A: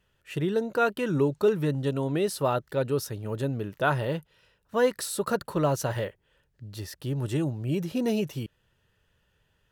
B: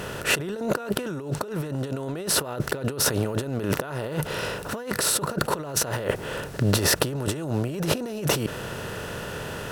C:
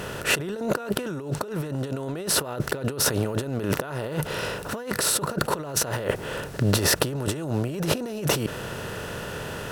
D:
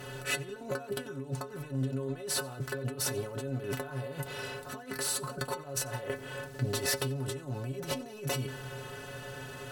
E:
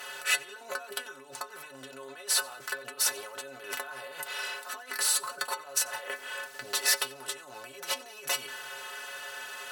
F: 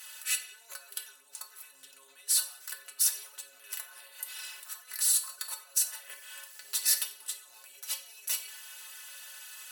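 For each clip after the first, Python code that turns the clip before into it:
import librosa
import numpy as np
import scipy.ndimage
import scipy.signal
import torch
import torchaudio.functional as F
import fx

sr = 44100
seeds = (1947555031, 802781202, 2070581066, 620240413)

y1 = fx.bin_compress(x, sr, power=0.6)
y1 = fx.over_compress(y1, sr, threshold_db=-35.0, ratio=-1.0)
y1 = y1 * 10.0 ** (7.0 / 20.0)
y2 = y1
y3 = fx.stiff_resonator(y2, sr, f0_hz=130.0, decay_s=0.23, stiffness=0.008)
y3 = fx.echo_feedback(y3, sr, ms=91, feedback_pct=41, wet_db=-23.0)
y4 = scipy.signal.sosfilt(scipy.signal.butter(2, 980.0, 'highpass', fs=sr, output='sos'), y3)
y4 = y4 * 10.0 ** (6.5 / 20.0)
y5 = np.diff(y4, prepend=0.0)
y5 = fx.room_shoebox(y5, sr, seeds[0], volume_m3=140.0, walls='mixed', distance_m=0.45)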